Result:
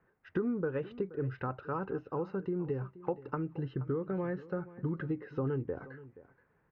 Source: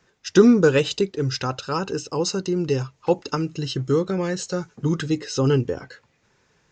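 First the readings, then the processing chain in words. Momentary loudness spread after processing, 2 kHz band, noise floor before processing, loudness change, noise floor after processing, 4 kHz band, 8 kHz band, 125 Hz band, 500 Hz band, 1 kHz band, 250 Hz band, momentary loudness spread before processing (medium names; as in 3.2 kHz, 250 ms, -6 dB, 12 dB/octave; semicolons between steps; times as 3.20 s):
5 LU, -15.5 dB, -65 dBFS, -14.0 dB, -73 dBFS, under -30 dB, under -40 dB, -12.0 dB, -14.5 dB, -11.5 dB, -14.5 dB, 11 LU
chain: compression 5:1, threshold -23 dBFS, peak gain reduction 14 dB; low-pass 1.8 kHz 24 dB/octave; on a send: delay 476 ms -17.5 dB; on the sum: trim -7.5 dB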